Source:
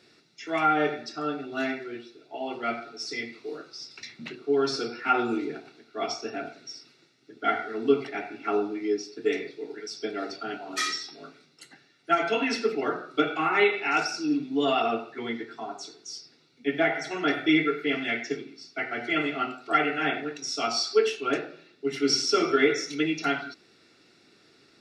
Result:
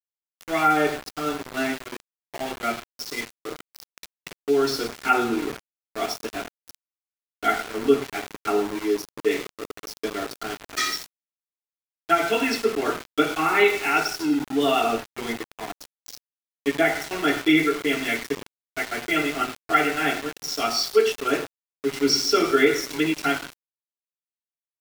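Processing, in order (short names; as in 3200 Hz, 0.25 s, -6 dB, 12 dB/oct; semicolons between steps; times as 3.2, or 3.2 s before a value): darkening echo 0.11 s, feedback 77%, low-pass 3000 Hz, level -20.5 dB; sample gate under -32.5 dBFS; gain +3.5 dB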